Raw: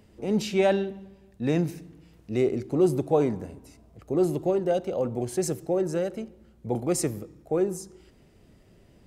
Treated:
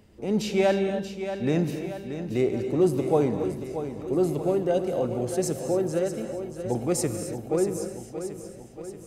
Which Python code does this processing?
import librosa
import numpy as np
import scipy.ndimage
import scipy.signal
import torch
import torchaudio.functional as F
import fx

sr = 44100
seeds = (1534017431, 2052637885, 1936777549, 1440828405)

y = fx.echo_feedback(x, sr, ms=631, feedback_pct=55, wet_db=-10.0)
y = fx.rev_gated(y, sr, seeds[0], gate_ms=300, shape='rising', drr_db=8.0)